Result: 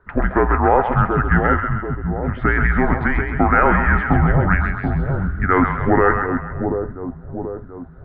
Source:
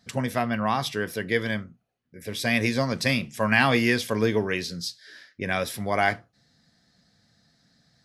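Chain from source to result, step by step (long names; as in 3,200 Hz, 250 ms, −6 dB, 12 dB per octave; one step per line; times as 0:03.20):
parametric band 610 Hz −2.5 dB 1.7 octaves
in parallel at +1 dB: compressor whose output falls as the input rises −26 dBFS, ratio −0.5
on the sum: echo with a time of its own for lows and highs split 1,000 Hz, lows 733 ms, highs 133 ms, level −5 dB
single-sideband voice off tune −290 Hz 240–2,000 Hz
level +6.5 dB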